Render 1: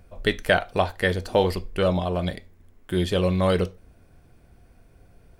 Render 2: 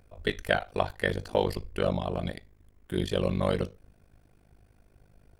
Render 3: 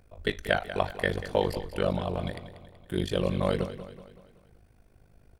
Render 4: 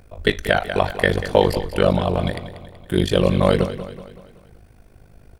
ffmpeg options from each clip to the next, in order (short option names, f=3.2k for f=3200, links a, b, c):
-af "tremolo=f=51:d=0.947,volume=-2dB"
-af "aecho=1:1:189|378|567|756|945:0.224|0.11|0.0538|0.0263|0.0129"
-af "alimiter=level_in=11.5dB:limit=-1dB:release=50:level=0:latency=1,volume=-1dB"